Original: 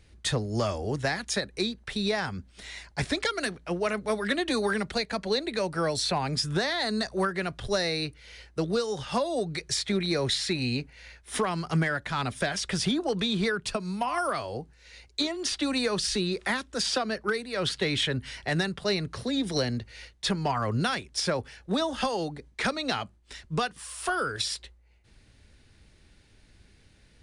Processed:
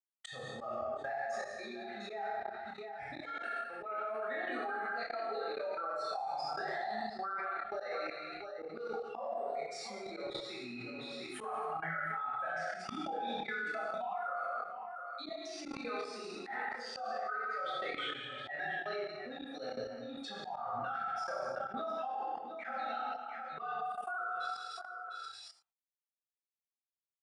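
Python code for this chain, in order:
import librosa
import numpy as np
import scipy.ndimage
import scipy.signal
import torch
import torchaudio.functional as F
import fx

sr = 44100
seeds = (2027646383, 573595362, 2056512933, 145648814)

p1 = fx.bin_expand(x, sr, power=2.0)
p2 = np.sign(p1) * np.maximum(np.abs(p1) - 10.0 ** (-58.5 / 20.0), 0.0)
p3 = fx.double_bandpass(p2, sr, hz=1000.0, octaves=0.71)
p4 = p3 + fx.echo_multitap(p3, sr, ms=(175, 704), db=(-10.5, -15.5), dry=0)
p5 = fx.rev_gated(p4, sr, seeds[0], gate_ms=350, shape='falling', drr_db=-7.5)
p6 = fx.level_steps(p5, sr, step_db=22)
p7 = fx.chorus_voices(p6, sr, voices=4, hz=0.48, base_ms=28, depth_ms=3.5, mix_pct=35)
p8 = fx.auto_swell(p7, sr, attack_ms=157.0)
p9 = fx.env_flatten(p8, sr, amount_pct=70)
y = p9 * 10.0 ** (6.5 / 20.0)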